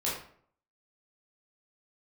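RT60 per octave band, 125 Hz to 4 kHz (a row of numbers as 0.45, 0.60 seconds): 0.65, 0.60, 0.60, 0.55, 0.50, 0.40 seconds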